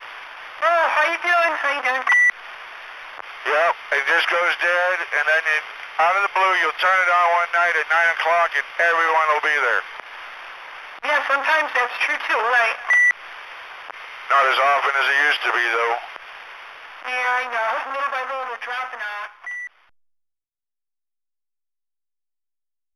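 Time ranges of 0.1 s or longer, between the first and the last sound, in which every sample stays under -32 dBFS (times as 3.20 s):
19.30–19.44 s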